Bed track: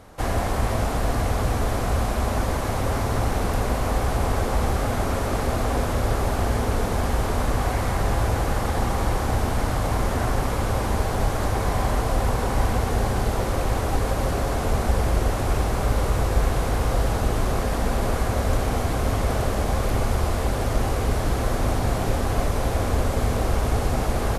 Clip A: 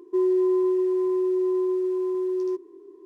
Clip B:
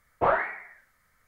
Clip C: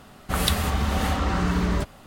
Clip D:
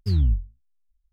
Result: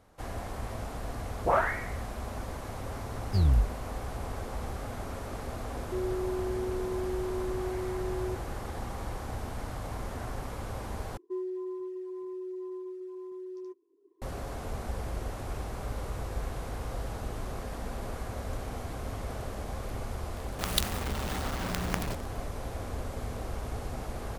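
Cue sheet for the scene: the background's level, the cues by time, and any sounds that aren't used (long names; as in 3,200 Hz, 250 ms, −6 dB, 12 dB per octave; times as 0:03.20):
bed track −14 dB
0:01.24: mix in B −2 dB + all-pass dispersion highs, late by 68 ms, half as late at 1,500 Hz
0:03.27: mix in D −3 dB
0:05.79: mix in A −5 dB + downward compressor 2 to 1, threshold −32 dBFS
0:11.17: overwrite with A −12 dB + reverb reduction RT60 0.86 s
0:20.30: mix in C −9.5 dB + log-companded quantiser 2 bits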